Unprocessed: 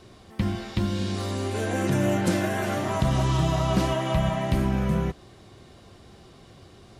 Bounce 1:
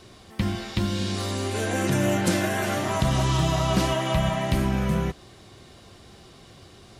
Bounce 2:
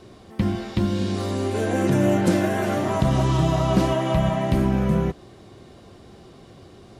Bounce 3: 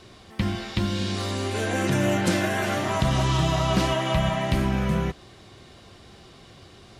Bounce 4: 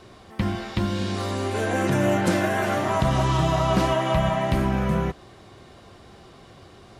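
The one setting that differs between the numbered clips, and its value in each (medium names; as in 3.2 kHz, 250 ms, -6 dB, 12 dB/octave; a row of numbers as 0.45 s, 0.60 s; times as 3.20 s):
peaking EQ, frequency: 16 kHz, 340 Hz, 3.1 kHz, 1.1 kHz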